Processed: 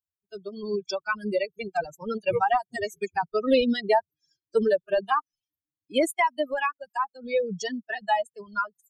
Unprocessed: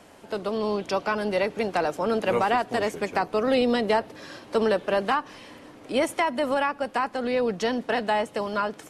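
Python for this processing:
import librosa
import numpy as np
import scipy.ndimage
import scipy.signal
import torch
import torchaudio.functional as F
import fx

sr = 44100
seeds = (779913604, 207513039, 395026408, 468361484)

y = fx.bin_expand(x, sr, power=3.0)
y = fx.dereverb_blind(y, sr, rt60_s=1.8)
y = F.gain(torch.from_numpy(y), 6.0).numpy()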